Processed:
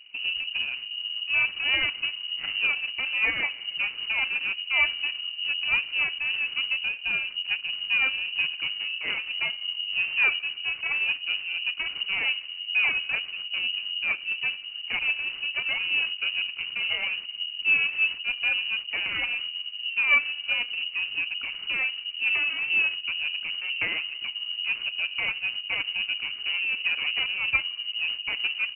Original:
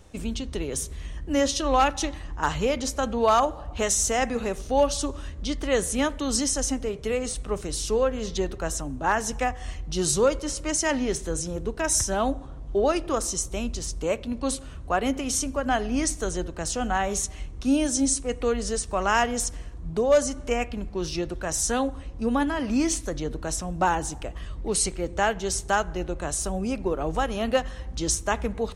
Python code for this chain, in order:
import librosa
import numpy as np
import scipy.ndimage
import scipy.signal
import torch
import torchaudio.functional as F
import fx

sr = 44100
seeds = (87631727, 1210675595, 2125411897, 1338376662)

y = scipy.signal.medfilt(x, 41)
y = fx.freq_invert(y, sr, carrier_hz=2900)